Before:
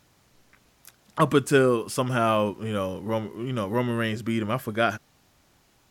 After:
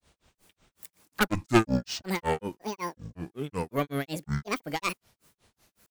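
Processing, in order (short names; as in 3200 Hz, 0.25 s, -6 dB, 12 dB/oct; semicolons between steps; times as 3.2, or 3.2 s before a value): added harmonics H 4 -8 dB, 6 -17 dB, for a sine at -6.5 dBFS; grains 0.172 s, grains 5.4/s, spray 32 ms, pitch spread up and down by 12 st; high shelf 7500 Hz +10.5 dB; gain -1 dB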